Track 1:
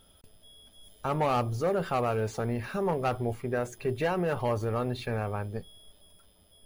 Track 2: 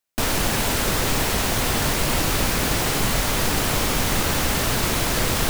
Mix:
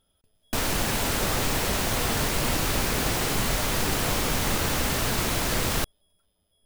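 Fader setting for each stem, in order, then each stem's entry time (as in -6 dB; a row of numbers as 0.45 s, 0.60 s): -11.5 dB, -4.0 dB; 0.00 s, 0.35 s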